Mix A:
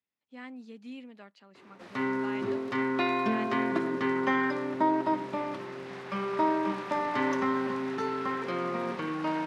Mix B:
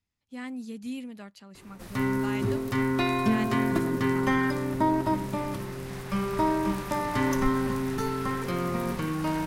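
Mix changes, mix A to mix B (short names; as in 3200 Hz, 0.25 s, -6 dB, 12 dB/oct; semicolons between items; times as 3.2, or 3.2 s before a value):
speech +3.5 dB; master: remove BPF 290–3600 Hz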